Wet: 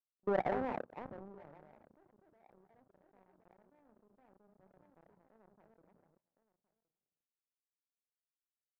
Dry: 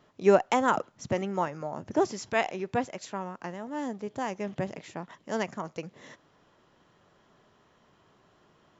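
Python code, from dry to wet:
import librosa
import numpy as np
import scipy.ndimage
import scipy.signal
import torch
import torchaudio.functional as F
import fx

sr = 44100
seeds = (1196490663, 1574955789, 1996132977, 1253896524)

y = fx.reverse_delay(x, sr, ms=213, wet_db=-8)
y = scipy.signal.sosfilt(scipy.signal.butter(8, 890.0, 'lowpass', fs=sr, output='sos'), y)
y = fx.hum_notches(y, sr, base_hz=60, count=6)
y = fx.level_steps(y, sr, step_db=19)
y = fx.doubler(y, sr, ms=32.0, db=-14.0)
y = y + 10.0 ** (-15.5 / 20.0) * np.pad(y, (int(1066 * sr / 1000.0), 0))[:len(y)]
y = fx.power_curve(y, sr, exponent=2.0)
y = fx.sustainer(y, sr, db_per_s=23.0)
y = y * 10.0 ** (-8.0 / 20.0)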